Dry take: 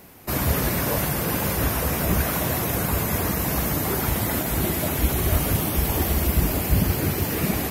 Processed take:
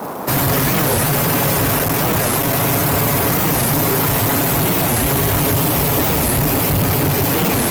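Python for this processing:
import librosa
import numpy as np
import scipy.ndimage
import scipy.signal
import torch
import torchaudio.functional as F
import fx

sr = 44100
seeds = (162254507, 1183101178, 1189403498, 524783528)

y = fx.cycle_switch(x, sr, every=3, mode='muted', at=(1.76, 2.61))
y = scipy.signal.sosfilt(scipy.signal.butter(4, 57.0, 'highpass', fs=sr, output='sos'), y)
y = y + 0.71 * np.pad(y, (int(7.2 * sr / 1000.0), 0))[:len(y)]
y = fx.leveller(y, sr, passes=5)
y = fx.dmg_noise_band(y, sr, seeds[0], low_hz=170.0, high_hz=1100.0, level_db=-22.0)
y = fx.record_warp(y, sr, rpm=45.0, depth_cents=250.0)
y = y * 10.0 ** (-5.0 / 20.0)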